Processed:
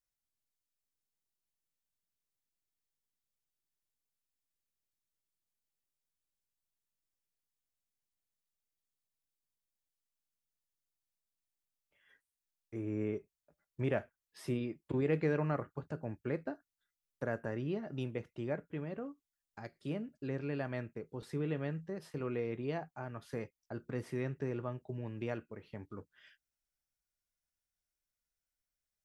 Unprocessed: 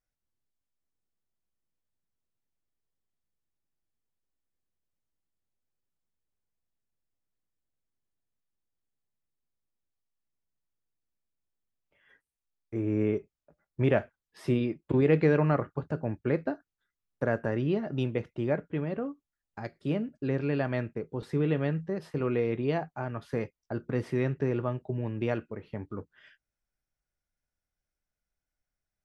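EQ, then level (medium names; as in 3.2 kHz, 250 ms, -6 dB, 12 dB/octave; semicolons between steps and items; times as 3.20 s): dynamic bell 3.9 kHz, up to -7 dB, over -53 dBFS, Q 0.82; treble shelf 2.6 kHz +11 dB; -9.0 dB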